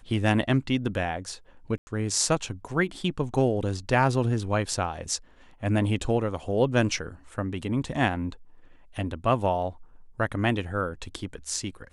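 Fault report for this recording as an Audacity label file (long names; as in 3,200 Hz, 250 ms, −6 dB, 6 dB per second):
1.780000	1.870000	drop-out 90 ms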